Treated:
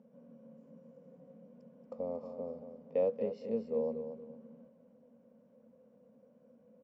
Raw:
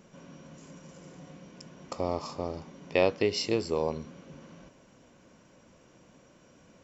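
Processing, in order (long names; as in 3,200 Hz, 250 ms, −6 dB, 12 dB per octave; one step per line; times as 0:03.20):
upward compression, threshold −51 dBFS
pair of resonant band-passes 340 Hz, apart 1.1 octaves
repeating echo 231 ms, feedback 31%, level −9.5 dB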